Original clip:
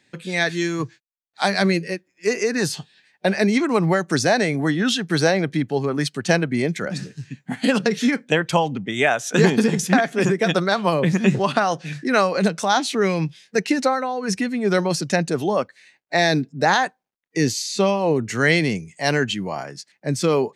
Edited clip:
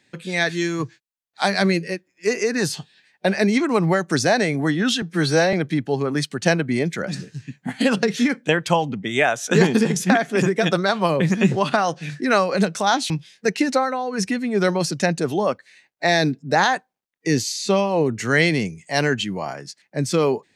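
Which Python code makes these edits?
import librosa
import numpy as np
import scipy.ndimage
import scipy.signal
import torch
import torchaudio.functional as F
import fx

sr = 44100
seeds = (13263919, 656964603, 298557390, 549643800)

y = fx.edit(x, sr, fx.stretch_span(start_s=5.02, length_s=0.34, factor=1.5),
    fx.cut(start_s=12.93, length_s=0.27), tone=tone)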